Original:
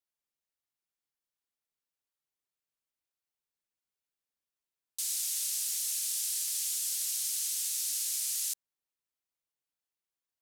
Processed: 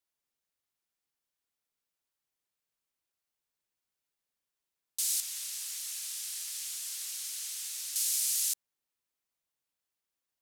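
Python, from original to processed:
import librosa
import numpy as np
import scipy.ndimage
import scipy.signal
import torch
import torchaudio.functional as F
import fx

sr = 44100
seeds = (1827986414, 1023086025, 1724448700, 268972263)

y = fx.high_shelf(x, sr, hz=3600.0, db=-10.5, at=(5.2, 7.96))
y = F.gain(torch.from_numpy(y), 3.0).numpy()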